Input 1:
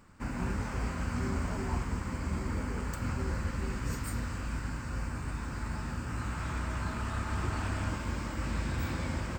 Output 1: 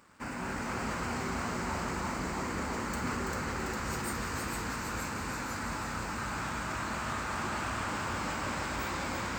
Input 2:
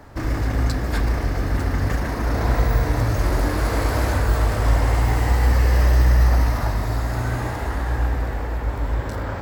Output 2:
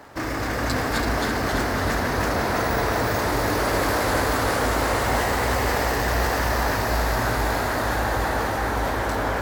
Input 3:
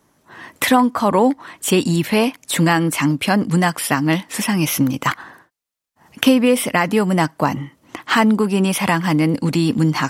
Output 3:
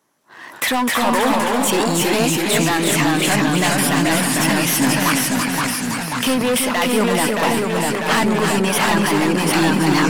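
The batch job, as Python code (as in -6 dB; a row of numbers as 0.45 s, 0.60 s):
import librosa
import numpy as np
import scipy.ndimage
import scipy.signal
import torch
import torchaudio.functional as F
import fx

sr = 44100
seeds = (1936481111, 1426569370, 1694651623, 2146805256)

p1 = fx.low_shelf(x, sr, hz=240.0, db=-10.5)
p2 = fx.leveller(p1, sr, passes=1)
p3 = fx.low_shelf(p2, sr, hz=68.0, db=-11.5)
p4 = fx.rider(p3, sr, range_db=10, speed_s=0.5)
p5 = p3 + (p4 * 10.0 ** (-2.5 / 20.0))
p6 = np.clip(10.0 ** (9.5 / 20.0) * p5, -1.0, 1.0) / 10.0 ** (9.5 / 20.0)
p7 = fx.echo_pitch(p6, sr, ms=220, semitones=-1, count=3, db_per_echo=-3.0)
p8 = p7 + fx.echo_feedback(p7, sr, ms=332, feedback_pct=37, wet_db=-6.5, dry=0)
p9 = fx.sustainer(p8, sr, db_per_s=25.0)
y = p9 * 10.0 ** (-6.0 / 20.0)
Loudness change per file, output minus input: +0.5 LU, -1.5 LU, +0.5 LU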